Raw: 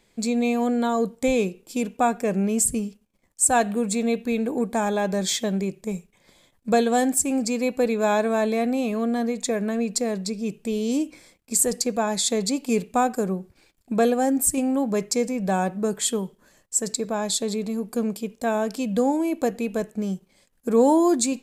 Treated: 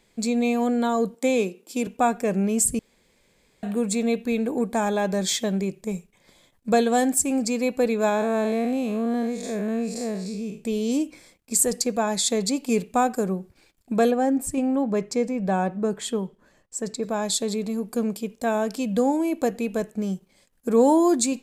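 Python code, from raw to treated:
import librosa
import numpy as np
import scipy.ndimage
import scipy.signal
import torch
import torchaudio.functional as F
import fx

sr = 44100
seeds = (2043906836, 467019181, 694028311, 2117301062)

y = fx.highpass(x, sr, hz=200.0, slope=24, at=(1.14, 1.87))
y = fx.spec_blur(y, sr, span_ms=136.0, at=(8.09, 10.64))
y = fx.lowpass(y, sr, hz=2500.0, slope=6, at=(14.11, 17.03))
y = fx.edit(y, sr, fx.room_tone_fill(start_s=2.79, length_s=0.84), tone=tone)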